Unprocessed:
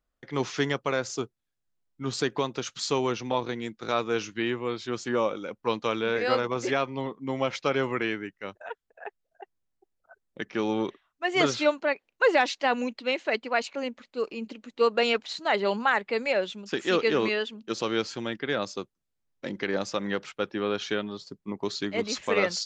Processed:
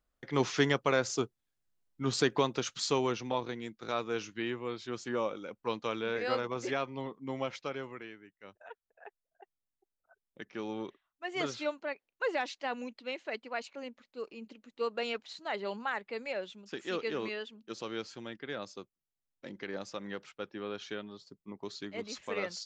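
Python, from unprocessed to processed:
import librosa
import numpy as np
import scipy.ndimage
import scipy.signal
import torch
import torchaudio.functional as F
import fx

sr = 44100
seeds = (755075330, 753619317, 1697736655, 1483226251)

y = fx.gain(x, sr, db=fx.line((2.48, -0.5), (3.6, -7.0), (7.38, -7.0), (8.2, -20.0), (8.61, -11.0)))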